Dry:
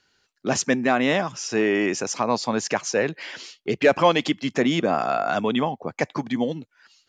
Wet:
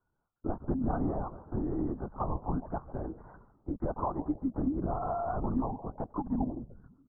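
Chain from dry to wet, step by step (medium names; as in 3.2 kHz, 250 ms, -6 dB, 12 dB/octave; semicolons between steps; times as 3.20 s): steep low-pass 1.7 kHz 96 dB/octave; peaking EQ 200 Hz +6 dB 0.62 oct; compression 4:1, threshold -21 dBFS, peak gain reduction 8.5 dB; static phaser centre 470 Hz, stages 6; frequency-shifting echo 147 ms, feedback 47%, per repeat -130 Hz, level -15 dB; LPC vocoder at 8 kHz whisper; trim -5 dB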